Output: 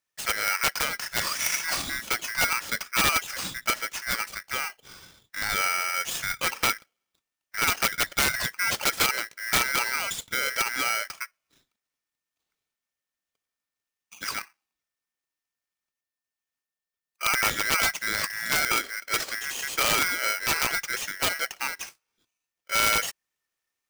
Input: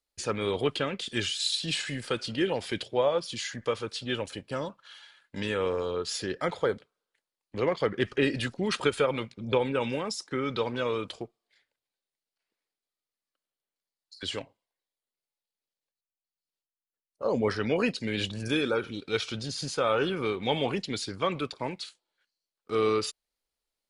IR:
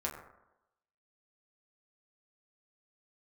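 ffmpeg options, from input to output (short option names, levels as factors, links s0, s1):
-af "aeval=exprs='(mod(7.94*val(0)+1,2)-1)/7.94':c=same,aeval=exprs='val(0)*sgn(sin(2*PI*1800*n/s))':c=same,volume=1.33"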